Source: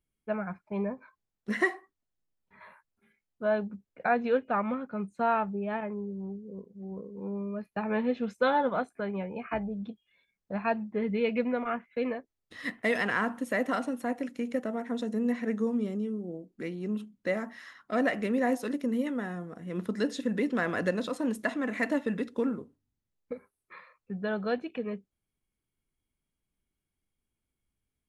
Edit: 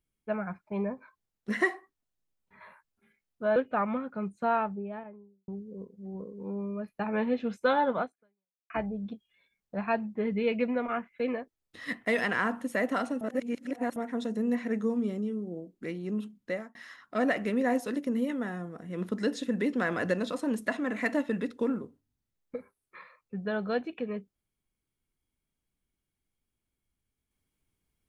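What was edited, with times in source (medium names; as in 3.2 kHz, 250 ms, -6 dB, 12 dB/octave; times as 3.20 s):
3.56–4.33 s: delete
5.17–6.25 s: studio fade out
8.78–9.47 s: fade out exponential
13.98–14.73 s: reverse
17.19–17.52 s: fade out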